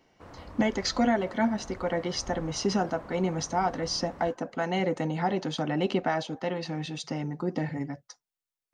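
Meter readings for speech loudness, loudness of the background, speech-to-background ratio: -29.5 LUFS, -47.0 LUFS, 17.5 dB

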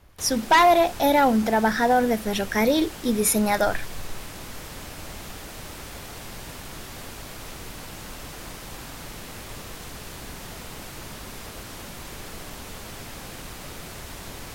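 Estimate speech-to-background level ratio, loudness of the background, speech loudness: 17.0 dB, -38.0 LUFS, -21.0 LUFS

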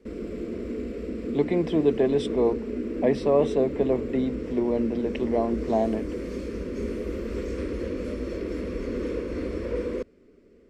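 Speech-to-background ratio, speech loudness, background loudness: 6.0 dB, -26.0 LUFS, -32.0 LUFS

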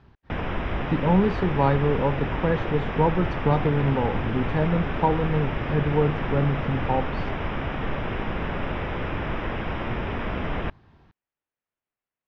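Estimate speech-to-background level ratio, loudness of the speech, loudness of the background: 5.0 dB, -25.0 LUFS, -30.0 LUFS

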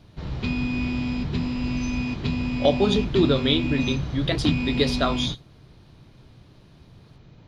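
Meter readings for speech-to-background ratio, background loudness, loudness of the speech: 3.5 dB, -27.5 LUFS, -24.0 LUFS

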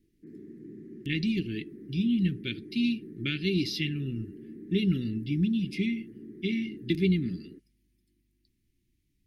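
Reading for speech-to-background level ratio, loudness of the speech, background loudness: 16.5 dB, -30.0 LUFS, -46.5 LUFS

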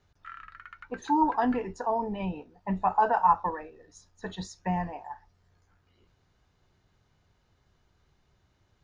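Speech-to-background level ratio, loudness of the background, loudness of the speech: 19.0 dB, -47.5 LUFS, -28.5 LUFS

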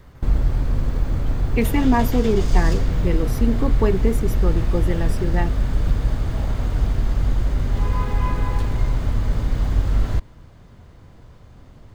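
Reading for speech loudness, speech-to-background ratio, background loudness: -24.0 LUFS, -0.5 dB, -23.5 LUFS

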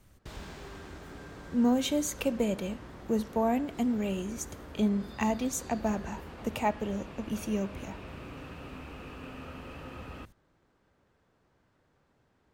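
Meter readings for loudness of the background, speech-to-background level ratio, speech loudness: -46.0 LUFS, 14.5 dB, -31.5 LUFS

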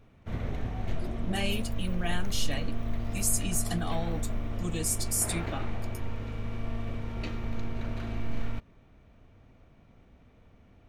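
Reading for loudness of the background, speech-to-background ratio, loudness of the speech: -36.5 LUFS, 4.5 dB, -32.0 LUFS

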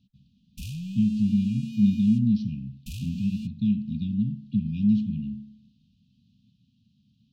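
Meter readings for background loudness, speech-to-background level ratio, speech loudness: -36.0 LUFS, 10.0 dB, -26.0 LUFS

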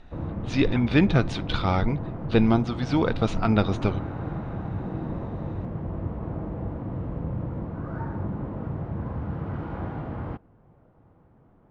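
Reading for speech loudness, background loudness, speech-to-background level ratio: -24.5 LUFS, -33.0 LUFS, 8.5 dB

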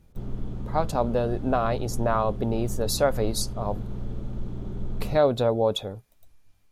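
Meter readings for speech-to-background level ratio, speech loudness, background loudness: 10.0 dB, -26.0 LUFS, -36.0 LUFS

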